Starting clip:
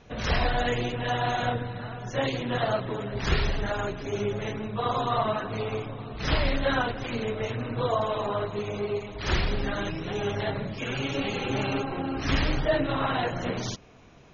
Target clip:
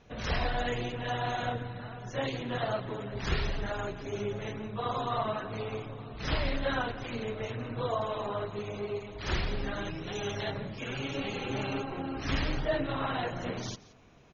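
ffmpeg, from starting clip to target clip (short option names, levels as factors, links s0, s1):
-filter_complex "[0:a]asettb=1/sr,asplit=3[s0][s1][s2];[s0]atrim=end=10.074[s3];[s1]atrim=start=10.07:end=10.52,asetpts=PTS-STARTPTS,afade=t=in:d=0.004:c=qsin,afade=t=out:st=0.446:d=0.004:c=qsin,aemphasis=mode=production:type=75fm[s4];[s2]atrim=start=10.516[s5];[s3][s4]acrossfade=d=0.004:c1=hsin:c2=qsin[s6];[s6][s5]acrossfade=d=0.004:c1=qsin:c2=hsin,asplit=2[s7][s8];[s8]aecho=0:1:173:0.106[s9];[s7][s9]amix=inputs=2:normalize=0,volume=0.531"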